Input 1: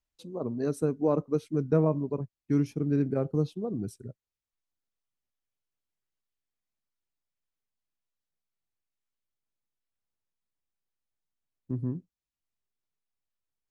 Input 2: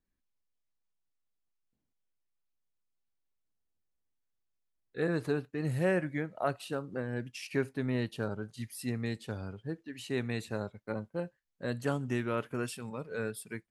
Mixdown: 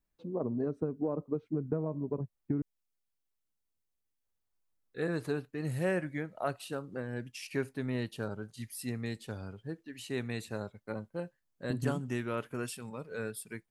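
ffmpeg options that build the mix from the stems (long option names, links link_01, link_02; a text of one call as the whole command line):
ffmpeg -i stem1.wav -i stem2.wav -filter_complex "[0:a]lowpass=1300,acompressor=threshold=-32dB:ratio=12,volume=3dB,asplit=3[link_01][link_02][link_03];[link_01]atrim=end=2.62,asetpts=PTS-STARTPTS,afade=type=out:start_time=2.616:duration=0.004:curve=hsin[link_04];[link_02]atrim=start=2.62:end=4.24,asetpts=PTS-STARTPTS,volume=0[link_05];[link_03]atrim=start=4.24,asetpts=PTS-STARTPTS,afade=type=in:duration=0.004:curve=hsin[link_06];[link_04][link_05][link_06]concat=n=3:v=0:a=1[link_07];[1:a]acontrast=29,volume=-7.5dB[link_08];[link_07][link_08]amix=inputs=2:normalize=0,highshelf=frequency=6700:gain=5.5" out.wav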